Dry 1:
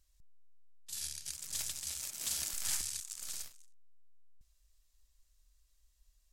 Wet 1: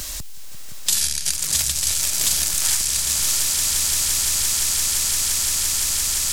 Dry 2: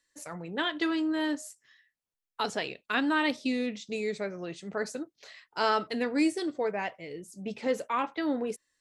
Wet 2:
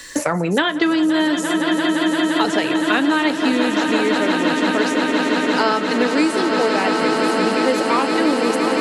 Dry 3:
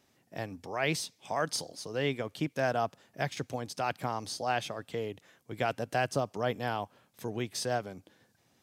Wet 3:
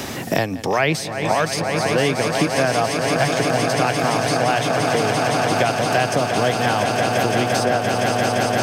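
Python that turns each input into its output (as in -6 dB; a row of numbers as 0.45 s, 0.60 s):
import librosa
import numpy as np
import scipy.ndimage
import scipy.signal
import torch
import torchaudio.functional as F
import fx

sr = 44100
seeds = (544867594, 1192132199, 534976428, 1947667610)

y = fx.echo_swell(x, sr, ms=172, loudest=8, wet_db=-10.0)
y = fx.band_squash(y, sr, depth_pct=100)
y = librosa.util.normalize(y) * 10.0 ** (-2 / 20.0)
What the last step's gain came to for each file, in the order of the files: +18.0 dB, +9.5 dB, +11.0 dB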